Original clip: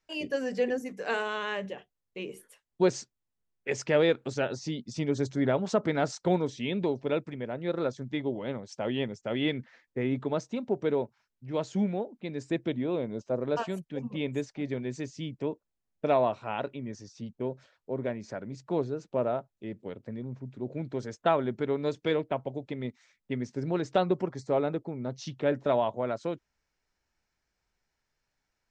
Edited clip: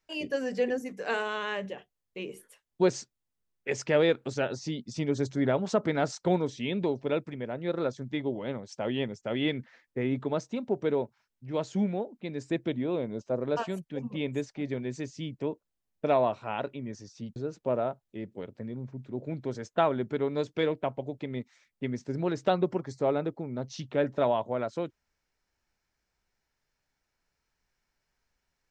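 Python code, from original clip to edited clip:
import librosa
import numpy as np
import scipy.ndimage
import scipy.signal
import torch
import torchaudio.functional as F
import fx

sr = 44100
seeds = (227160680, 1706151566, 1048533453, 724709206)

y = fx.edit(x, sr, fx.cut(start_s=17.36, length_s=1.48), tone=tone)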